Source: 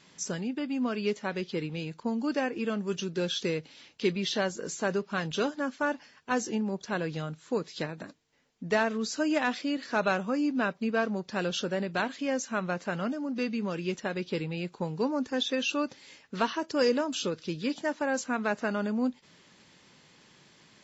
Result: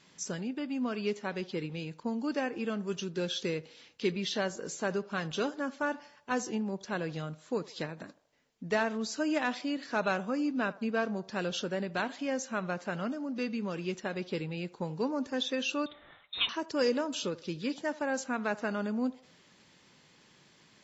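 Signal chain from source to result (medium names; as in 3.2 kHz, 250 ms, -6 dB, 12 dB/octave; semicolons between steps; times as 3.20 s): 15.86–16.49 s: frequency inversion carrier 3.9 kHz; band-passed feedback delay 78 ms, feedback 53%, band-pass 730 Hz, level -18 dB; trim -3 dB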